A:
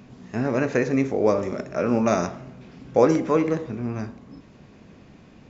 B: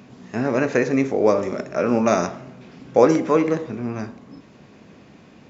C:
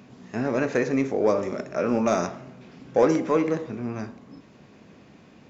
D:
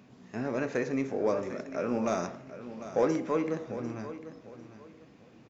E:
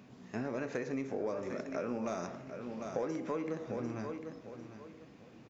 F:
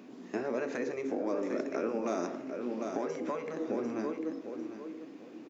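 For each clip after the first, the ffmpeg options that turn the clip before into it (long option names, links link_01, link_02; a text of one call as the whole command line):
ffmpeg -i in.wav -af "highpass=frequency=170:poles=1,volume=3.5dB" out.wav
ffmpeg -i in.wav -af "acontrast=25,volume=-8.5dB" out.wav
ffmpeg -i in.wav -af "aecho=1:1:748|1496|2244:0.224|0.0604|0.0163,volume=-7dB" out.wav
ffmpeg -i in.wav -af "acompressor=threshold=-33dB:ratio=6" out.wav
ffmpeg -i in.wav -af "highpass=frequency=300:width_type=q:width=3.4,afftfilt=real='re*lt(hypot(re,im),0.2)':imag='im*lt(hypot(re,im),0.2)':win_size=1024:overlap=0.75,volume=2.5dB" out.wav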